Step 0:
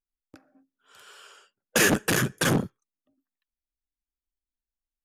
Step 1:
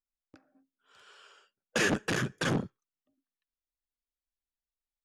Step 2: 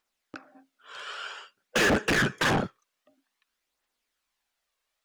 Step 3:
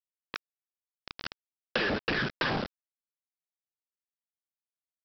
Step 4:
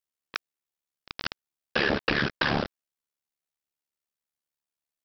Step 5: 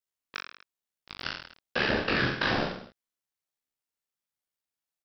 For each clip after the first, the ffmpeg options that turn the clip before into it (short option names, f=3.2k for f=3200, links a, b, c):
-af "lowpass=5.9k,volume=-6dB"
-filter_complex "[0:a]aphaser=in_gain=1:out_gain=1:delay=1.9:decay=0.35:speed=0.52:type=triangular,asplit=2[a][b];[b]highpass=f=720:p=1,volume=26dB,asoftclip=type=tanh:threshold=-15.5dB[c];[a][c]amix=inputs=2:normalize=0,lowpass=f=3.2k:p=1,volume=-6dB"
-af "aresample=11025,acrusher=bits=4:mix=0:aa=0.000001,aresample=44100,acompressor=threshold=-30dB:ratio=10,volume=3.5dB"
-af "tremolo=f=72:d=0.824,volume=7.5dB"
-filter_complex "[0:a]flanger=delay=16:depth=7:speed=1.1,asplit=2[a][b];[b]aecho=0:1:40|84|132.4|185.6|244.2:0.631|0.398|0.251|0.158|0.1[c];[a][c]amix=inputs=2:normalize=0"